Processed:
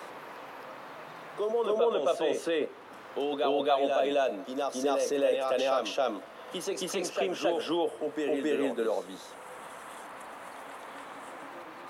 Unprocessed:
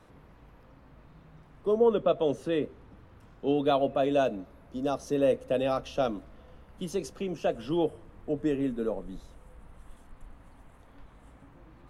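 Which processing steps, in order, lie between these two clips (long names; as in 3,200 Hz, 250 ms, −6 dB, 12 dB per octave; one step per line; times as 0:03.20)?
high-pass filter 540 Hz 12 dB per octave
in parallel at −1 dB: compressor whose output falls as the input rises −37 dBFS, ratio −1
on the sum: backwards echo 269 ms −3.5 dB
multiband upward and downward compressor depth 40%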